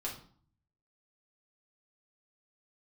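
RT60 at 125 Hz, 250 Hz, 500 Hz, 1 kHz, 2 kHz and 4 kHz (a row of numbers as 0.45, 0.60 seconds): 0.95, 0.70, 0.50, 0.50, 0.40, 0.40 seconds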